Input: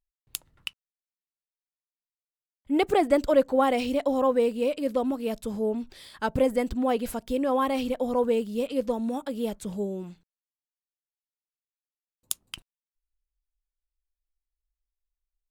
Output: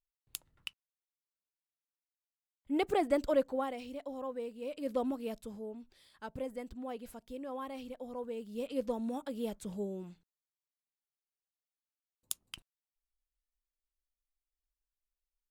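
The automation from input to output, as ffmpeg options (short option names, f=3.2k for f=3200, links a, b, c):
-af "volume=11.5dB,afade=t=out:st=3.35:d=0.4:silence=0.354813,afade=t=in:st=4.61:d=0.39:silence=0.298538,afade=t=out:st=5:d=0.66:silence=0.316228,afade=t=in:st=8.35:d=0.43:silence=0.354813"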